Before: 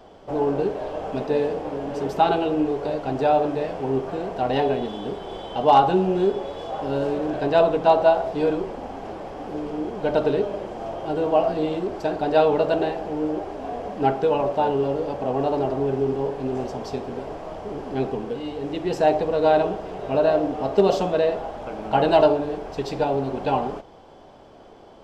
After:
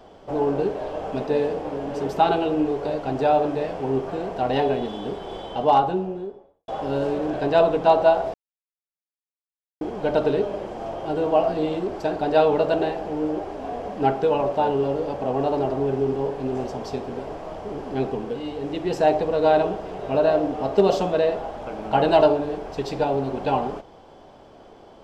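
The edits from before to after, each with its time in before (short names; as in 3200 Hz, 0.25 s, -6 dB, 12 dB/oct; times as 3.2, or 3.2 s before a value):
5.36–6.68 studio fade out
8.34–9.81 mute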